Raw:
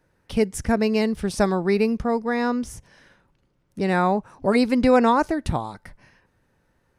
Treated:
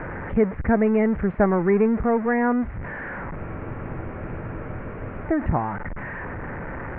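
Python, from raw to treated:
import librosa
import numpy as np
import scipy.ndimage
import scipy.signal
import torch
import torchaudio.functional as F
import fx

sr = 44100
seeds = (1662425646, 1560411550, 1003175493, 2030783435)

y = x + 0.5 * 10.0 ** (-25.5 / 20.0) * np.sign(x)
y = scipy.signal.sosfilt(scipy.signal.butter(8, 2100.0, 'lowpass', fs=sr, output='sos'), y)
y = fx.spec_freeze(y, sr, seeds[0], at_s=3.39, hold_s=1.86)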